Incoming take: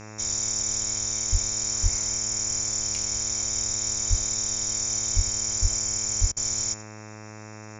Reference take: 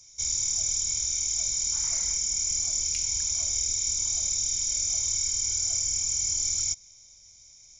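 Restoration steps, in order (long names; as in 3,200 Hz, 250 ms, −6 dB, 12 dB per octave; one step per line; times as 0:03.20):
hum removal 107.1 Hz, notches 25
high-pass at the plosives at 0:01.31/0:01.82/0:04.09/0:05.15/0:05.61/0:06.20
repair the gap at 0:06.32, 45 ms
echo removal 88 ms −18 dB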